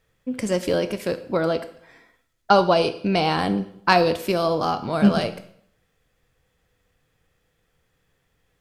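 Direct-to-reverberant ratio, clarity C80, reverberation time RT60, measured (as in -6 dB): 11.0 dB, 16.5 dB, 0.65 s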